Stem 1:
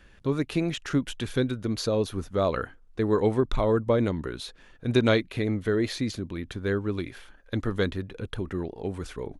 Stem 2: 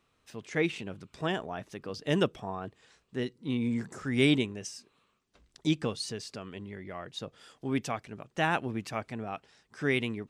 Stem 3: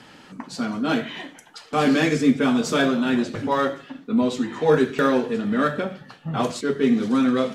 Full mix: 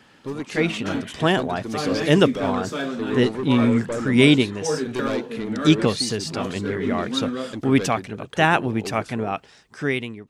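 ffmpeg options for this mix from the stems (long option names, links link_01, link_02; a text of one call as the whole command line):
ffmpeg -i stem1.wav -i stem2.wav -i stem3.wav -filter_complex "[0:a]highpass=170,asoftclip=type=tanh:threshold=-22.5dB,volume=0dB[link_01];[1:a]dynaudnorm=framelen=120:gausssize=11:maxgain=16dB,volume=-1.5dB[link_02];[2:a]volume=-7.5dB[link_03];[link_01][link_02][link_03]amix=inputs=3:normalize=0" out.wav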